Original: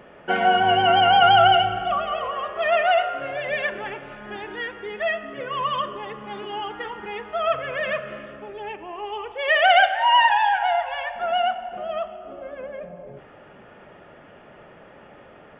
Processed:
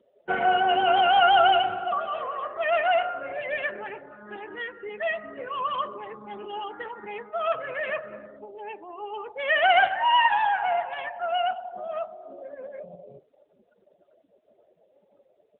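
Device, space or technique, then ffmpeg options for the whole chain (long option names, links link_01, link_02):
mobile call with aggressive noise cancelling: -af "highpass=140,afftdn=noise_reduction=33:noise_floor=-36,volume=-3dB" -ar 8000 -c:a libopencore_amrnb -b:a 10200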